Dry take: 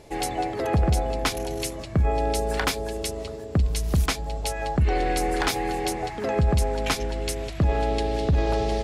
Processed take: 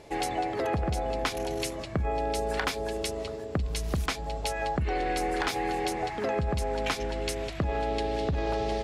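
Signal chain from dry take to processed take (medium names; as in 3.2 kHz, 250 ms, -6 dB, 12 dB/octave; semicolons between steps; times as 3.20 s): low-pass 2.7 kHz 6 dB/octave; tilt EQ +1.5 dB/octave; compression, threshold -26 dBFS, peak gain reduction 5.5 dB; trim +1 dB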